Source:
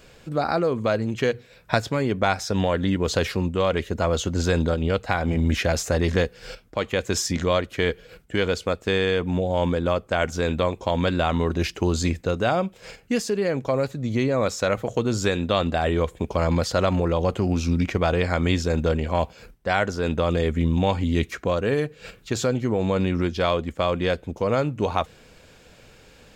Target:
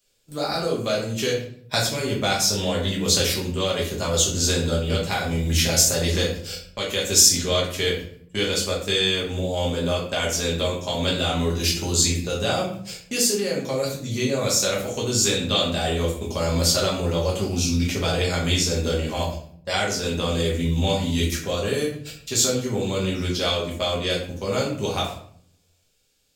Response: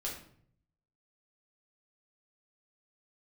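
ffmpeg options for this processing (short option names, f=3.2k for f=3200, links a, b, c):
-filter_complex "[0:a]acrossover=split=150|1400|2100[a][b][c][d];[d]crystalizer=i=7.5:c=0[e];[a][b][c][e]amix=inputs=4:normalize=0,agate=range=-22dB:threshold=-32dB:ratio=16:detection=peak[f];[1:a]atrim=start_sample=2205[g];[f][g]afir=irnorm=-1:irlink=0,volume=-4dB"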